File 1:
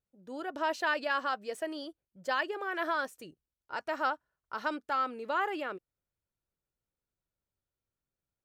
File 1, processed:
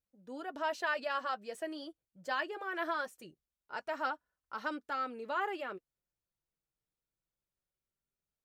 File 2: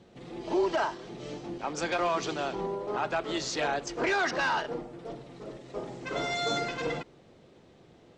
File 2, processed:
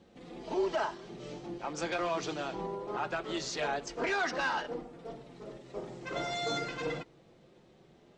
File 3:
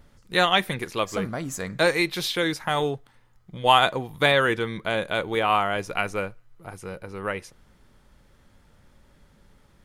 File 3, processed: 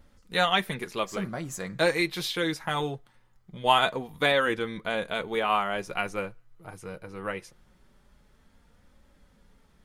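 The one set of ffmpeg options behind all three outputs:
-af "flanger=delay=3.7:depth=2.9:regen=-42:speed=0.22:shape=triangular"

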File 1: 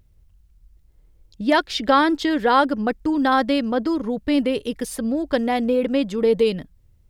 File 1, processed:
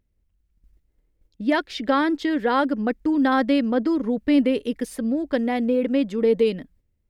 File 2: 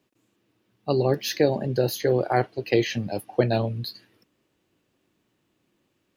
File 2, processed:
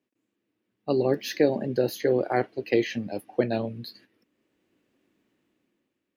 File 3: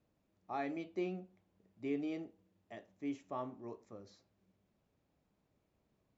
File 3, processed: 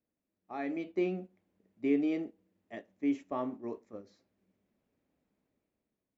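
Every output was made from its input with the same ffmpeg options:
-af "agate=range=0.447:threshold=0.00316:ratio=16:detection=peak,equalizer=f=125:t=o:w=1:g=-3,equalizer=f=250:t=o:w=1:g=8,equalizer=f=500:t=o:w=1:g=4,equalizer=f=2000:t=o:w=1:g=6,dynaudnorm=f=130:g=11:m=3.16,volume=0.398"

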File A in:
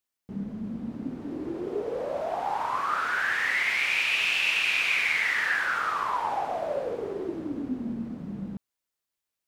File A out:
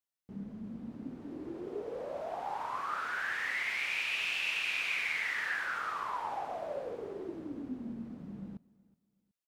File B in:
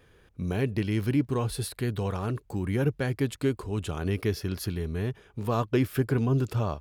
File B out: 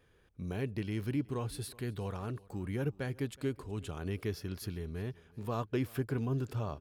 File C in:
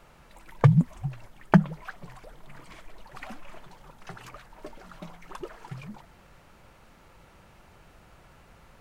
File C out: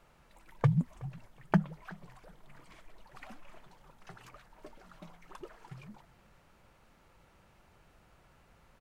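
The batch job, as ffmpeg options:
-af "aecho=1:1:371|742:0.0708|0.0198,volume=0.376"

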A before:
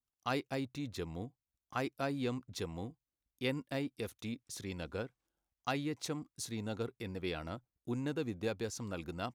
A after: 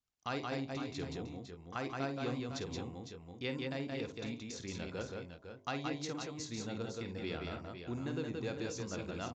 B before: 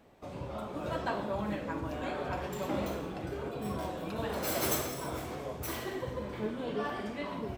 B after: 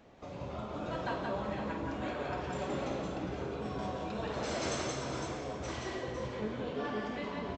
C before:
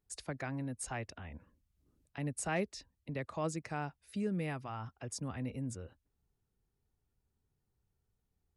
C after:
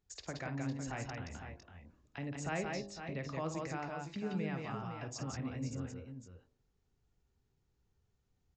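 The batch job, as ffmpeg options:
-filter_complex "[0:a]bandreject=f=50.11:t=h:w=4,bandreject=f=100.22:t=h:w=4,bandreject=f=150.33:t=h:w=4,bandreject=f=200.44:t=h:w=4,bandreject=f=250.55:t=h:w=4,bandreject=f=300.66:t=h:w=4,bandreject=f=350.77:t=h:w=4,bandreject=f=400.88:t=h:w=4,bandreject=f=450.99:t=h:w=4,bandreject=f=501.1:t=h:w=4,bandreject=f=551.21:t=h:w=4,bandreject=f=601.32:t=h:w=4,bandreject=f=651.43:t=h:w=4,bandreject=f=701.54:t=h:w=4,bandreject=f=751.65:t=h:w=4,bandreject=f=801.76:t=h:w=4,bandreject=f=851.87:t=h:w=4,bandreject=f=901.98:t=h:w=4,bandreject=f=952.09:t=h:w=4,bandreject=f=1002.2:t=h:w=4,bandreject=f=1052.31:t=h:w=4,bandreject=f=1102.42:t=h:w=4,bandreject=f=1152.53:t=h:w=4,asplit=2[s0][s1];[s1]acompressor=threshold=0.00398:ratio=6,volume=1.26[s2];[s0][s2]amix=inputs=2:normalize=0,aecho=1:1:51|174|189|505|528:0.299|0.668|0.224|0.355|0.178,aresample=16000,aresample=44100,volume=0.562"

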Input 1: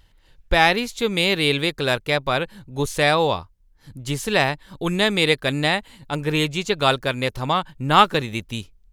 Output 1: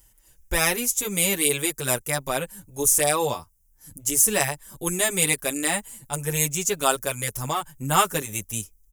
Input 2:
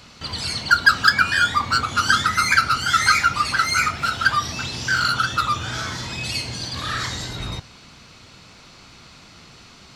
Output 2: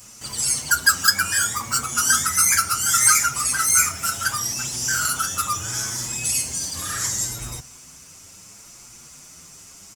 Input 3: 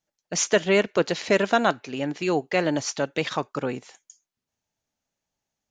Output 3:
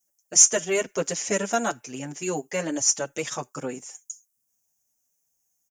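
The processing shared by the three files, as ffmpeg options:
-filter_complex "[0:a]equalizer=f=4300:t=o:w=0.23:g=-6,aexciter=amount=14.1:drive=3.3:freq=5800,asplit=2[s0][s1];[s1]adelay=6.8,afreqshift=0.7[s2];[s0][s2]amix=inputs=2:normalize=1,volume=0.75"

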